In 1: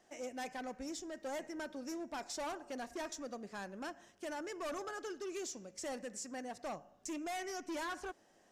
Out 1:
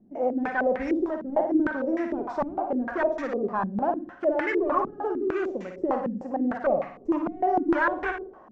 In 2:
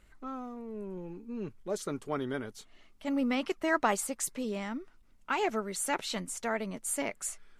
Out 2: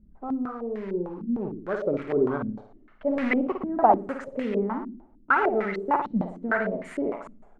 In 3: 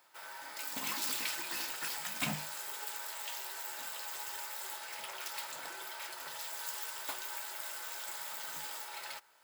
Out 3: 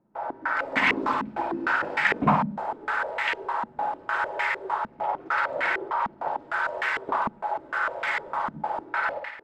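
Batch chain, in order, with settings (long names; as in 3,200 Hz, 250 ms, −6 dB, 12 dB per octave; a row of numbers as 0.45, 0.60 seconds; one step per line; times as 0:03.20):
in parallel at −11 dB: wrap-around overflow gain 26.5 dB
on the sum: floating-point word with a short mantissa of 2 bits
flutter between parallel walls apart 9.6 metres, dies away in 0.59 s
low-pass on a step sequencer 6.6 Hz 220–2,000 Hz
loudness normalisation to −27 LKFS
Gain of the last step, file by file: +10.0, +2.0, +12.5 decibels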